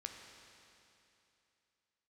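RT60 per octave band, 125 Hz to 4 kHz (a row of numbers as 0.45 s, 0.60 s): 2.9 s, 2.9 s, 2.9 s, 2.8 s, 2.9 s, 2.8 s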